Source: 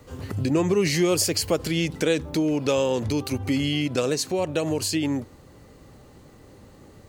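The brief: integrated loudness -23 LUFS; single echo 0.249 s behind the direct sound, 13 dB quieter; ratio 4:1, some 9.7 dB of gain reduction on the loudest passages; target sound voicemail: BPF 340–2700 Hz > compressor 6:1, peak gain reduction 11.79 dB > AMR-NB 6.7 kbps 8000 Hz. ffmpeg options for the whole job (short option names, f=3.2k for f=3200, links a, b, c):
-af "acompressor=threshold=-29dB:ratio=4,highpass=340,lowpass=2.7k,aecho=1:1:249:0.224,acompressor=threshold=-40dB:ratio=6,volume=22dB" -ar 8000 -c:a libopencore_amrnb -b:a 6700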